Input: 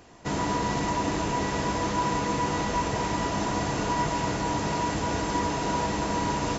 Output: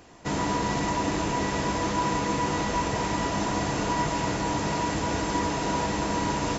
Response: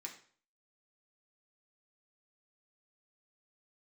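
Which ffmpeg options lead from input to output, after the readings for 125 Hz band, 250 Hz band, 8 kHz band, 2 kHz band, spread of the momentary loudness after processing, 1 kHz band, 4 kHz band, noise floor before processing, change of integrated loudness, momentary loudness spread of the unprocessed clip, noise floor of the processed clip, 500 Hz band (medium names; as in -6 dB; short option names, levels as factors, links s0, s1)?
0.0 dB, +1.0 dB, no reading, +1.0 dB, 1 LU, 0.0 dB, +1.0 dB, -30 dBFS, +0.5 dB, 1 LU, -30 dBFS, +0.5 dB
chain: -filter_complex "[0:a]asplit=2[s0][s1];[1:a]atrim=start_sample=2205[s2];[s1][s2]afir=irnorm=-1:irlink=0,volume=0.282[s3];[s0][s3]amix=inputs=2:normalize=0"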